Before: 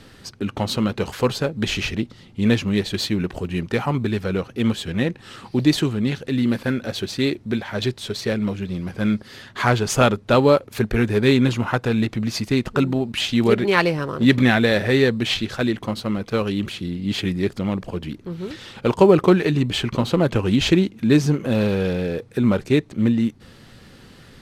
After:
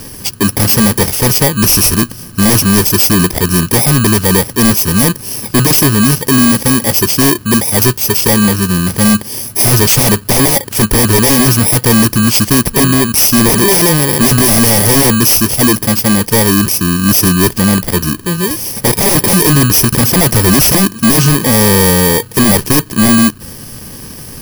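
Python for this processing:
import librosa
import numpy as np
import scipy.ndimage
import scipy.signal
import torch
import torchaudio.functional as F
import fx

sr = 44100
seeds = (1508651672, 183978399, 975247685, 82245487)

y = fx.bit_reversed(x, sr, seeds[0], block=32)
y = fx.high_shelf(y, sr, hz=2500.0, db=5.5)
y = fx.fold_sine(y, sr, drive_db=14, ceiling_db=-1.5)
y = y * 10.0 ** (-2.5 / 20.0)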